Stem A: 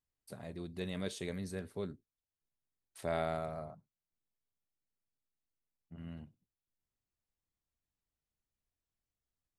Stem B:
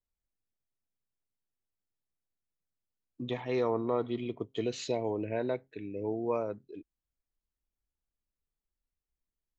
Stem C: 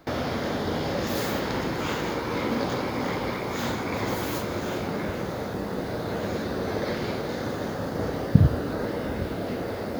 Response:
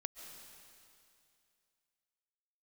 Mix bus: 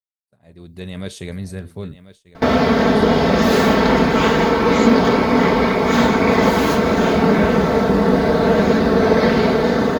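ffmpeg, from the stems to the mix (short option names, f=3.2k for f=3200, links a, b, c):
-filter_complex "[0:a]asubboost=boost=4.5:cutoff=180,volume=-6.5dB,asplit=2[a][b];[b]volume=-14dB[c];[1:a]aemphasis=mode=production:type=50kf,volume=-10dB[d];[2:a]aemphasis=mode=reproduction:type=50kf,aecho=1:1:4.5:0.73,adelay=2350,volume=-1.5dB,asplit=2[e][f];[f]volume=-10.5dB[g];[3:a]atrim=start_sample=2205[h];[g][h]afir=irnorm=-1:irlink=0[i];[c]aecho=0:1:1040:1[j];[a][d][e][i][j]amix=inputs=5:normalize=0,dynaudnorm=f=270:g=5:m=16dB,agate=range=-33dB:threshold=-42dB:ratio=3:detection=peak"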